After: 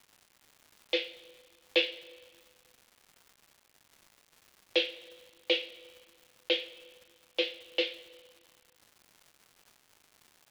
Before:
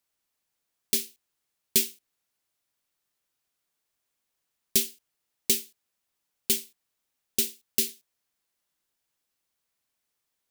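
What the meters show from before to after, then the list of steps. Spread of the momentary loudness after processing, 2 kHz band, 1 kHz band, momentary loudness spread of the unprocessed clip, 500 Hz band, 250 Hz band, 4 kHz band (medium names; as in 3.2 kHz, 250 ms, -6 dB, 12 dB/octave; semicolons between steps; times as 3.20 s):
19 LU, +7.5 dB, no reading, 9 LU, +8.0 dB, -2.0 dB, +2.0 dB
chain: two-slope reverb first 0.27 s, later 1.6 s, from -19 dB, DRR 0.5 dB; mistuned SSB +110 Hz 290–3200 Hz; crackle 350 per s -52 dBFS; trim +5.5 dB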